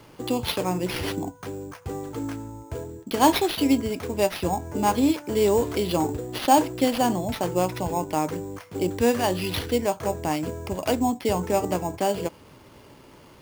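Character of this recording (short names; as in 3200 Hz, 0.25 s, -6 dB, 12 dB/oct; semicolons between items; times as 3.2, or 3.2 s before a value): aliases and images of a low sample rate 7600 Hz, jitter 0%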